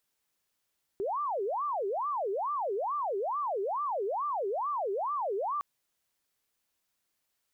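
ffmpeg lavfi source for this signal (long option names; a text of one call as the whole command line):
ffmpeg -f lavfi -i "aevalsrc='0.0355*sin(2*PI*(787*t-403/(2*PI*2.3)*sin(2*PI*2.3*t)))':duration=4.61:sample_rate=44100" out.wav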